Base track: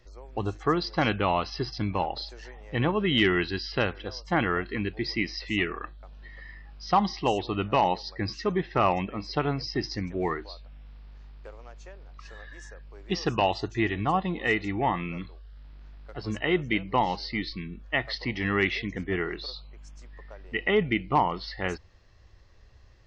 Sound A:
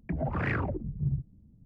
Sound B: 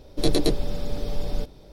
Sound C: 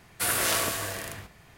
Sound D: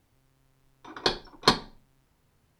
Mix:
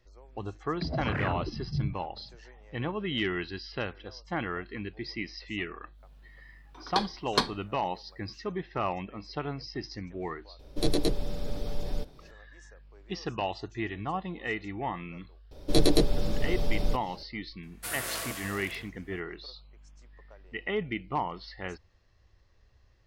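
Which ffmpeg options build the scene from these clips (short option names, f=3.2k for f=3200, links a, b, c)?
-filter_complex "[2:a]asplit=2[a][b];[0:a]volume=-7.5dB[c];[1:a]atrim=end=1.65,asetpts=PTS-STARTPTS,volume=-1.5dB,afade=t=in:d=0.004:c=hsin,afade=t=out:st=1.646:d=0.004:c=hsin,adelay=720[d];[4:a]atrim=end=2.59,asetpts=PTS-STARTPTS,volume=-5dB,afade=t=in:d=0.1,afade=t=out:st=2.49:d=0.1,adelay=5900[e];[a]atrim=end=1.72,asetpts=PTS-STARTPTS,volume=-5dB,afade=t=in:d=0.004:c=hsin,afade=t=out:st=1.716:d=0.004:c=hsin,adelay=10590[f];[b]atrim=end=1.72,asetpts=PTS-STARTPTS,volume=-0.5dB,afade=t=in:d=0.004:c=hsin,afade=t=out:st=1.716:d=0.004:c=hsin,adelay=15510[g];[3:a]atrim=end=1.57,asetpts=PTS-STARTPTS,volume=-9.5dB,afade=t=in:d=0.004:c=hsin,afade=t=out:st=1.566:d=0.004:c=hsin,adelay=17630[h];[c][d][e][f][g][h]amix=inputs=6:normalize=0"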